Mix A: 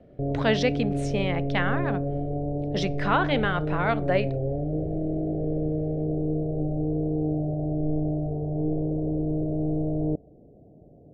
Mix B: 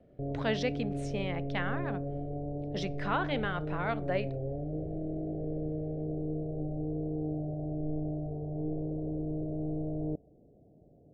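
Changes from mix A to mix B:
speech -8.0 dB; background -8.0 dB

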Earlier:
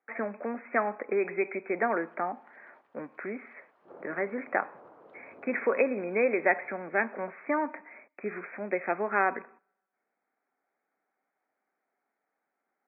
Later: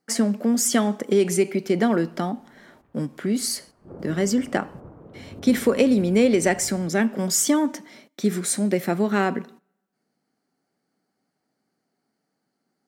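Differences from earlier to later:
speech: remove brick-wall FIR low-pass 2600 Hz; master: remove HPF 630 Hz 12 dB/oct

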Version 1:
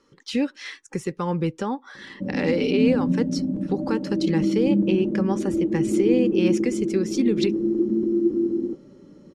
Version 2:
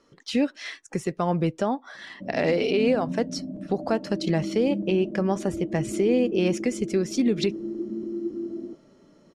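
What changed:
background -9.5 dB; master: remove Butterworth band-stop 660 Hz, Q 3.6

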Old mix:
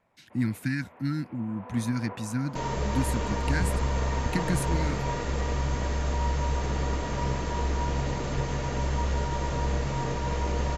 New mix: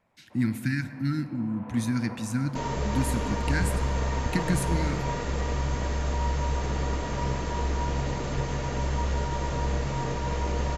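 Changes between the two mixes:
speech: send on; first sound: send -11.0 dB

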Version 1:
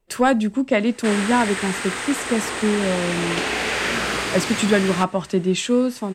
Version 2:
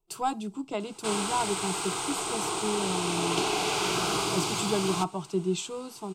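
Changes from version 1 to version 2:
speech -7.0 dB; master: add fixed phaser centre 360 Hz, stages 8

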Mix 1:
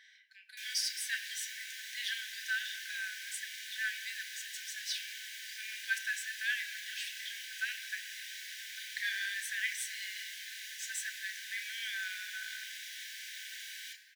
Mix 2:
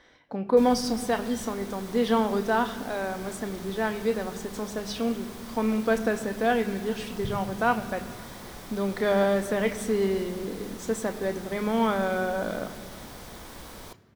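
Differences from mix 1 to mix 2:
background: send -11.5 dB; master: remove brick-wall FIR high-pass 1500 Hz

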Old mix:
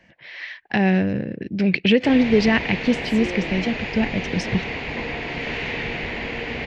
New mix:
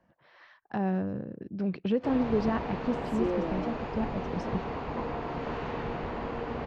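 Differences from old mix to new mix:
speech -11.0 dB; first sound -4.5 dB; master: add resonant high shelf 1600 Hz -9.5 dB, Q 3

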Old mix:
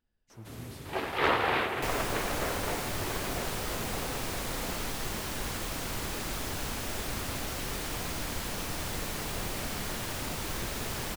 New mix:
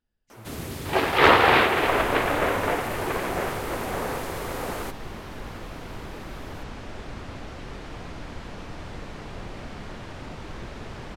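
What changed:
first sound +10.5 dB; second sound: add tape spacing loss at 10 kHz 23 dB

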